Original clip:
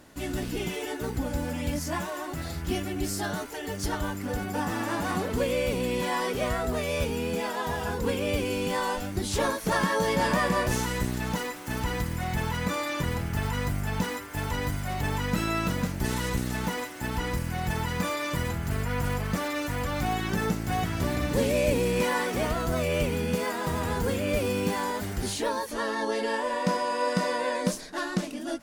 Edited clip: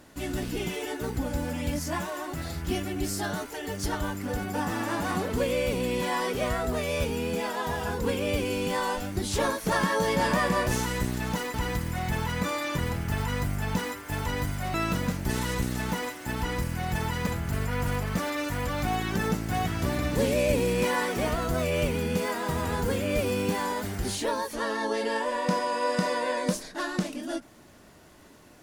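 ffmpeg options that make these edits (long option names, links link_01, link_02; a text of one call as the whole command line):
ffmpeg -i in.wav -filter_complex "[0:a]asplit=4[link_01][link_02][link_03][link_04];[link_01]atrim=end=11.542[link_05];[link_02]atrim=start=11.788:end=14.992[link_06];[link_03]atrim=start=15.488:end=18.022[link_07];[link_04]atrim=start=18.448[link_08];[link_05][link_06]acrossfade=duration=0.004:curve1=hsin:curve2=hsin[link_09];[link_09][link_07]acrossfade=duration=0.004:curve1=hsin:curve2=hsin[link_10];[link_10][link_08]acrossfade=duration=0.004:curve1=hsin:curve2=hsin" out.wav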